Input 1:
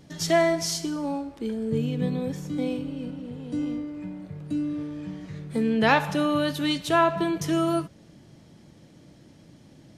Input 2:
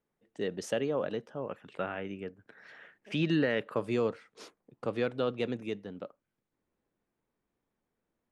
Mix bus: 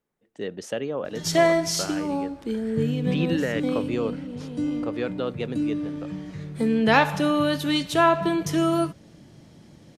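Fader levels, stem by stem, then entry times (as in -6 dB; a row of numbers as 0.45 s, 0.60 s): +2.0 dB, +2.0 dB; 1.05 s, 0.00 s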